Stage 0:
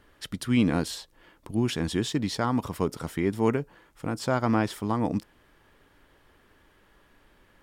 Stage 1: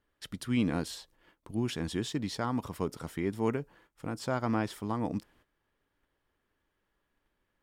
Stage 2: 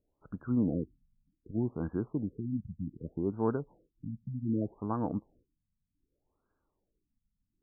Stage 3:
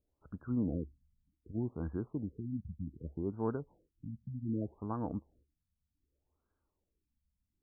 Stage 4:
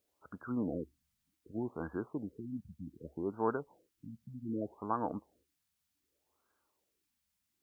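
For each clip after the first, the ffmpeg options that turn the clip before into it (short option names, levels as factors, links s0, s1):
-af "agate=range=0.224:threshold=0.00178:ratio=16:detection=peak,volume=0.501"
-af "afftfilt=real='re*lt(b*sr/1024,230*pow(1700/230,0.5+0.5*sin(2*PI*0.65*pts/sr)))':imag='im*lt(b*sr/1024,230*pow(1700/230,0.5+0.5*sin(2*PI*0.65*pts/sr)))':win_size=1024:overlap=0.75"
-af "equalizer=f=71:t=o:w=0.51:g=12.5,volume=0.562"
-af "highpass=f=1100:p=1,volume=3.76"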